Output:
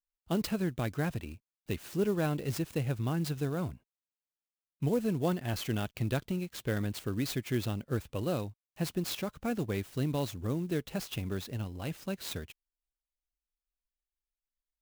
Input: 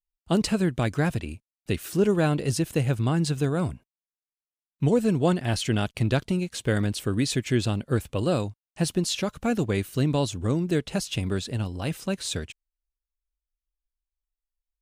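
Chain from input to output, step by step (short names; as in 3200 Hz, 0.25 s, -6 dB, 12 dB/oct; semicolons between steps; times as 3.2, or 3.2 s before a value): clock jitter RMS 0.025 ms; gain -8 dB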